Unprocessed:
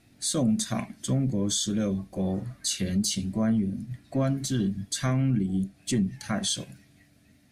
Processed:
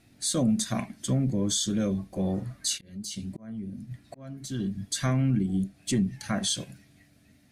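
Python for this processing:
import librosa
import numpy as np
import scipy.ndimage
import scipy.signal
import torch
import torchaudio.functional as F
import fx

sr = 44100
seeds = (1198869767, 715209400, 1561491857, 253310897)

y = fx.auto_swell(x, sr, attack_ms=774.0, at=(2.77, 4.82), fade=0.02)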